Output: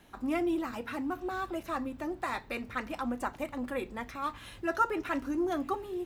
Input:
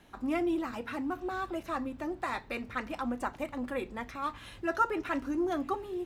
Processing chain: treble shelf 11 kHz +7.5 dB

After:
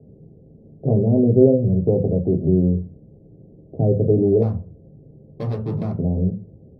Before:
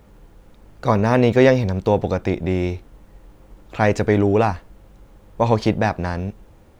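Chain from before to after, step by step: steep low-pass 650 Hz 48 dB/octave; peaking EQ 310 Hz -3.5 dB 0.36 oct; in parallel at +2.5 dB: compression, threshold -25 dBFS, peak gain reduction 14.5 dB; 4.42–5.93 s: on the sum: hard clipper -20.5 dBFS, distortion -12 dB; reverberation RT60 0.30 s, pre-delay 3 ms, DRR 0 dB; trim -17 dB

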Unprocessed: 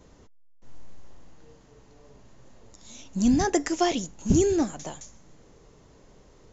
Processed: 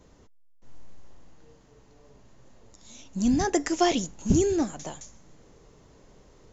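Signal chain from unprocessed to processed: gain riding 0.5 s

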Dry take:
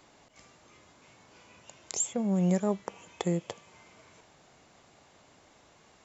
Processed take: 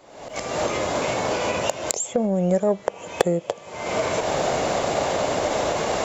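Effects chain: recorder AGC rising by 61 dB/s; peaking EQ 570 Hz +11.5 dB 1.1 oct; saturation -8.5 dBFS, distortion -9 dB; trim +2 dB

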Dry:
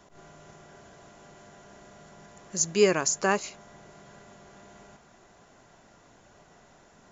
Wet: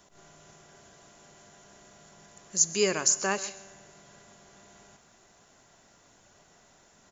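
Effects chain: treble shelf 3.2 kHz +11 dB; feedback comb 97 Hz, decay 1.7 s, harmonics all, mix 50%; on a send: delay 136 ms -18 dB

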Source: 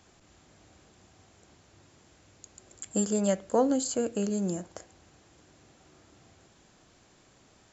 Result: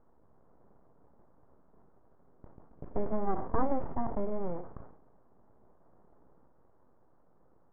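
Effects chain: bit-reversed sample order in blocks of 16 samples; reverse echo 49 ms -23.5 dB; full-wave rectifier; inverse Chebyshev low-pass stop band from 5.3 kHz, stop band 70 dB; decay stretcher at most 81 dB/s

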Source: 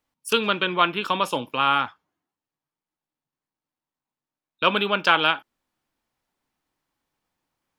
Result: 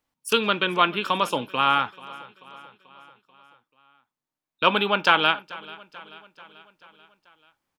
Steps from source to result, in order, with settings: 4.64–5.10 s: peaking EQ 860 Hz +7.5 dB 0.22 oct; on a send: feedback delay 437 ms, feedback 58%, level -20.5 dB

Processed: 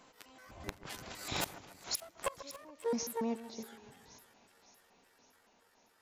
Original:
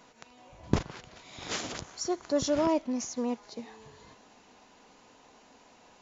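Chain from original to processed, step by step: pitch shift switched off and on +11.5 st, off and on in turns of 134 ms; Doppler pass-by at 1.61 s, 18 m/s, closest 7.3 m; inverted gate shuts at -27 dBFS, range -28 dB; wavefolder -33 dBFS; on a send: two-band feedback delay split 2.1 kHz, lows 141 ms, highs 559 ms, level -14 dB; on the sum: trim +8.5 dB

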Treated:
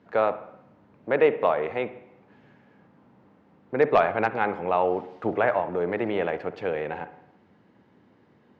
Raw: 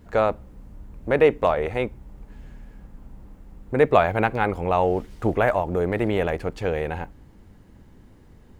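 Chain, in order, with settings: Bessel high-pass 170 Hz, order 8; bass shelf 310 Hz -6 dB; wavefolder -7.5 dBFS; distance through air 230 m; reverberation RT60 0.80 s, pre-delay 52 ms, DRR 12.5 dB

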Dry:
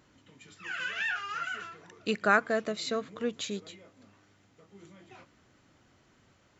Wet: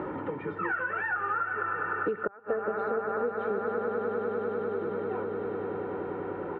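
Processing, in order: coarse spectral quantiser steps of 15 dB; bass shelf 94 Hz -10 dB; echo with a slow build-up 100 ms, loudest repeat 5, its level -13 dB; inverted gate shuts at -15 dBFS, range -30 dB; compression, threshold -34 dBFS, peak gain reduction 9.5 dB; low-pass 1.3 kHz 24 dB/octave; peaking EQ 120 Hz -9 dB 0.33 oct; comb 2.2 ms, depth 58%; three bands compressed up and down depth 100%; trim +9 dB

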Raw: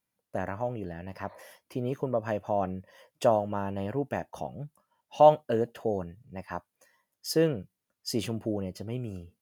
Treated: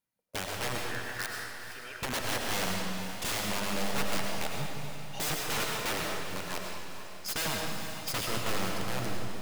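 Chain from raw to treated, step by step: reverb removal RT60 0.62 s; waveshaping leveller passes 1; 0.78–1.97 s: resonant high-pass 1.5 kHz, resonance Q 6.3; integer overflow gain 25 dB; echo that smears into a reverb 460 ms, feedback 46%, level -10 dB; reverberation RT60 1.7 s, pre-delay 60 ms, DRR 0 dB; trim -2.5 dB

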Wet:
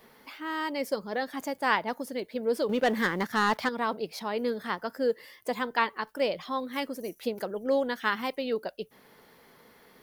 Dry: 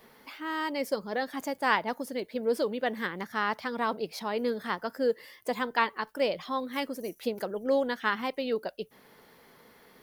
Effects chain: 2.69–3.69 s: waveshaping leveller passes 2; 7.95–8.36 s: treble shelf 5.3 kHz +6.5 dB

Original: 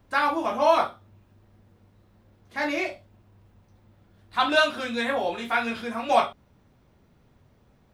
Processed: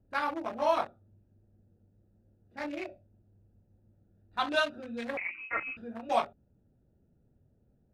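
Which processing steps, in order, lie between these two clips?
local Wiener filter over 41 samples; 5.17–5.77 s: frequency inversion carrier 2.8 kHz; trim -7 dB

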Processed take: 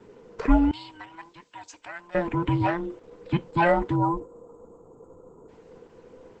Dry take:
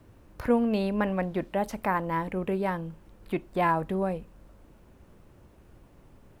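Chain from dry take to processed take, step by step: every band turned upside down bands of 500 Hz; 0.71–2.15 s: pre-emphasis filter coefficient 0.97; 3.95–5.48 s: spectral selection erased 1.4–6.5 kHz; trim +5 dB; Opus 12 kbps 48 kHz

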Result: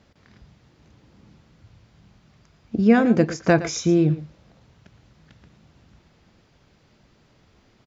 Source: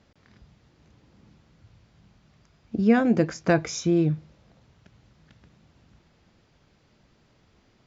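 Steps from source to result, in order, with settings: delay 115 ms -15 dB; trim +3.5 dB

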